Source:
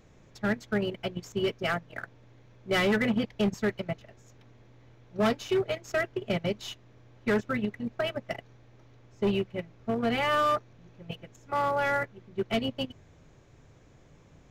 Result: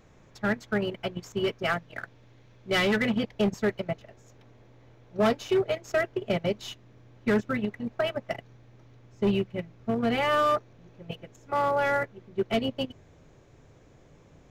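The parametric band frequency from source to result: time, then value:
parametric band +3.5 dB 1.7 octaves
1,100 Hz
from 0:01.73 3,800 Hz
from 0:03.22 580 Hz
from 0:06.60 200 Hz
from 0:07.55 810 Hz
from 0:08.35 160 Hz
from 0:10.11 470 Hz

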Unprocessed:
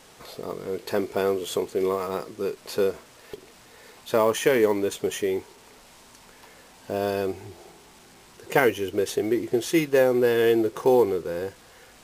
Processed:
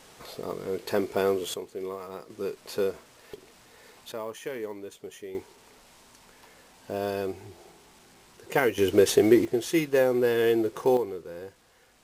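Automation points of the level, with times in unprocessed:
−1 dB
from 0:01.54 −10.5 dB
from 0:02.30 −4 dB
from 0:04.12 −15 dB
from 0:05.35 −4 dB
from 0:08.78 +5.5 dB
from 0:09.45 −3 dB
from 0:10.97 −10 dB

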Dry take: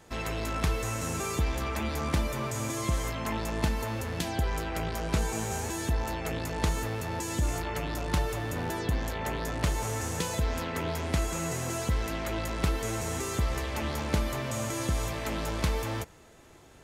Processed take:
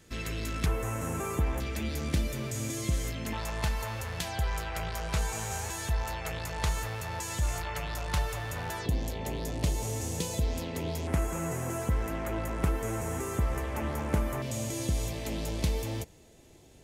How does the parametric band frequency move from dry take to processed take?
parametric band −13.5 dB 1.2 octaves
830 Hz
from 0:00.66 4,500 Hz
from 0:01.60 1,000 Hz
from 0:03.33 280 Hz
from 0:08.86 1,400 Hz
from 0:11.07 4,200 Hz
from 0:14.42 1,300 Hz

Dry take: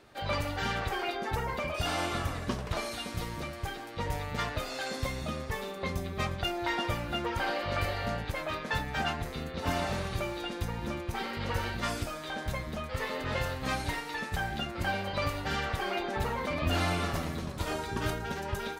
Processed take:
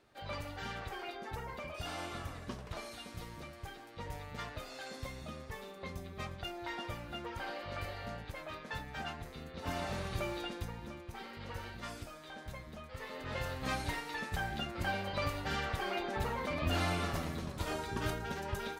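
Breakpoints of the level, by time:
0:09.40 −10 dB
0:10.35 −2.5 dB
0:10.91 −11.5 dB
0:12.99 −11.5 dB
0:13.61 −4 dB

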